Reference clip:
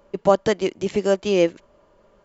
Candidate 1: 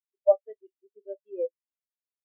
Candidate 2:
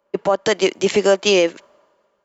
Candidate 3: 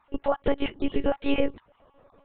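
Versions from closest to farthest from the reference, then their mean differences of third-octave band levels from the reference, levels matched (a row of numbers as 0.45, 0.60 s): 2, 3, 1; 4.5, 8.5, 18.5 dB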